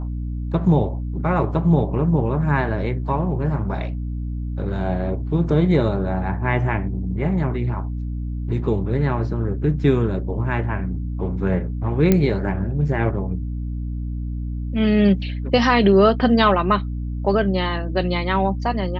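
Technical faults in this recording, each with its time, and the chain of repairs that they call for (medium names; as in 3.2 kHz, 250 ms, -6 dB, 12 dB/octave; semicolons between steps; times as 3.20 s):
hum 60 Hz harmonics 5 -26 dBFS
12.12 s: pop -4 dBFS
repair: de-click; de-hum 60 Hz, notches 5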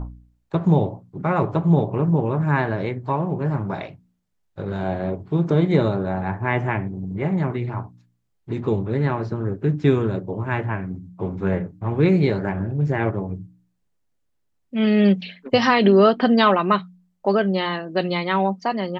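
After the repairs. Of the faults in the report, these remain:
nothing left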